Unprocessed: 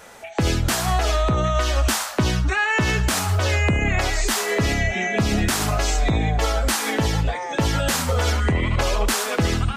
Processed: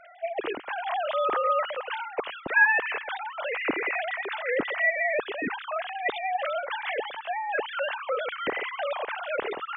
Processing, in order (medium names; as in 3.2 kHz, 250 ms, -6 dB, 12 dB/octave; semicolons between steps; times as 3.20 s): formants replaced by sine waves; trim -8.5 dB